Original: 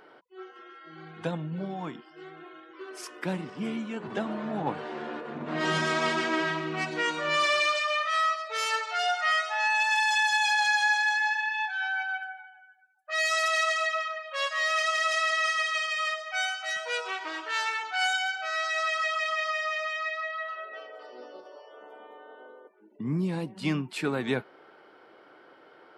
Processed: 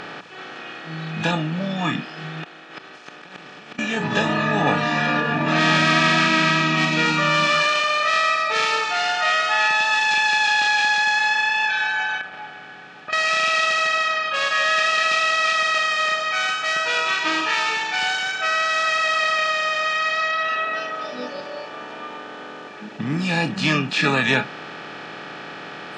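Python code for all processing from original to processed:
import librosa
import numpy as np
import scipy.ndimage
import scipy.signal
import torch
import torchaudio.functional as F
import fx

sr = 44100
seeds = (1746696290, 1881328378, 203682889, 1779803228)

y = fx.chain(x, sr, fx.bass_treble(bass_db=-15, treble_db=10),
    fx.over_compress(threshold_db=-44.0, ratio=-1.0),
    fx.gate_flip(shuts_db=-37.0, range_db=-39), at=(2.43, 3.79))
y = fx.chain(y, sr, fx.highpass(hz=120.0, slope=24),
    fx.over_compress(threshold_db=-43.0, ratio=-1.0),
    fx.air_absorb(metres=500.0), at=(12.21, 13.13))
y = fx.bin_compress(y, sr, power=0.2)
y = scipy.signal.sosfilt(scipy.signal.butter(2, 4900.0, 'lowpass', fs=sr, output='sos'), y)
y = fx.noise_reduce_blind(y, sr, reduce_db=15)
y = y * 10.0 ** (1.5 / 20.0)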